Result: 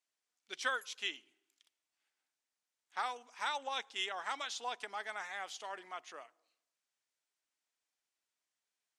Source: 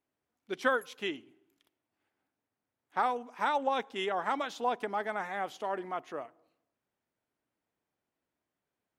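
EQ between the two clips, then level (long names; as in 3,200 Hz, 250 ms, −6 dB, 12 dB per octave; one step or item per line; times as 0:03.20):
resonant band-pass 7,900 Hz, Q 1
high-frequency loss of the air 77 metres
high-shelf EQ 8,400 Hz +5 dB
+11.0 dB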